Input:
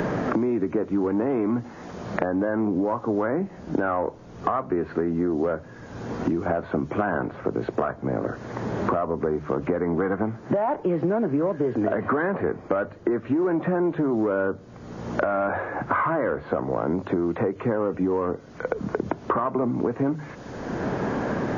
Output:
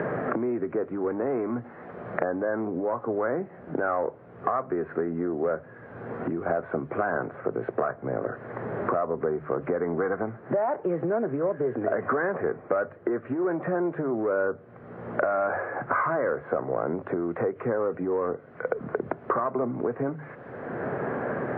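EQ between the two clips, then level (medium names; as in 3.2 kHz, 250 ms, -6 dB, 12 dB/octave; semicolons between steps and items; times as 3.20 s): cabinet simulation 150–2000 Hz, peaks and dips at 200 Hz -9 dB, 300 Hz -8 dB, 930 Hz -6 dB; 0.0 dB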